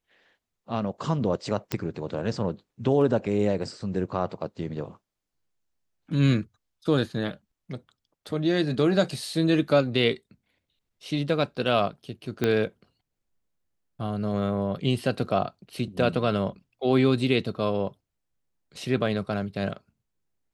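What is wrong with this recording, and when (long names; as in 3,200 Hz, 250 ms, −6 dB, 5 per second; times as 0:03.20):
0:01.72: click −11 dBFS
0:12.44: click −11 dBFS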